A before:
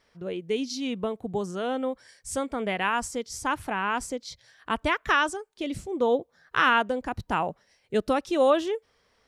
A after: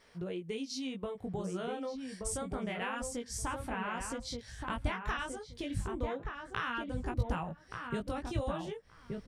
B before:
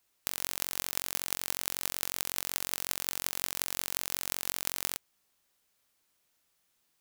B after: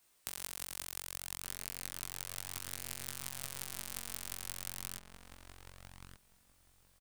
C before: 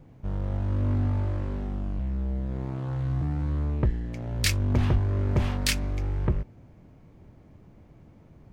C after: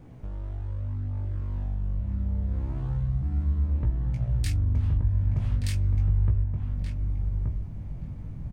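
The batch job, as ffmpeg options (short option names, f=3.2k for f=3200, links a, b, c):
-filter_complex "[0:a]flanger=delay=16.5:depth=5.1:speed=0.29,equalizer=f=8.8k:w=5.9:g=6.5,acompressor=threshold=-44dB:ratio=4,asubboost=boost=5:cutoff=160,asplit=2[a][b];[b]adelay=1176,lowpass=f=1.3k:p=1,volume=-3.5dB,asplit=2[c][d];[d]adelay=1176,lowpass=f=1.3k:p=1,volume=0.17,asplit=2[e][f];[f]adelay=1176,lowpass=f=1.3k:p=1,volume=0.17[g];[a][c][e][g]amix=inputs=4:normalize=0,volume=6.5dB"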